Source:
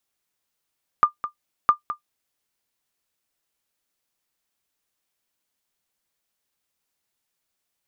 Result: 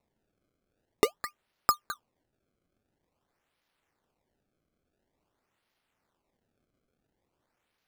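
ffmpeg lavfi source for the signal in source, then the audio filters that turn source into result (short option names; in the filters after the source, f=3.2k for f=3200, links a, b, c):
-f lavfi -i "aevalsrc='0.501*(sin(2*PI*1200*mod(t,0.66))*exp(-6.91*mod(t,0.66)/0.11)+0.237*sin(2*PI*1200*max(mod(t,0.66)-0.21,0))*exp(-6.91*max(mod(t,0.66)-0.21,0)/0.11))':d=1.32:s=44100"
-af "equalizer=f=1.1k:w=5.2:g=-10.5,acrusher=samples=27:mix=1:aa=0.000001:lfo=1:lforange=43.2:lforate=0.48"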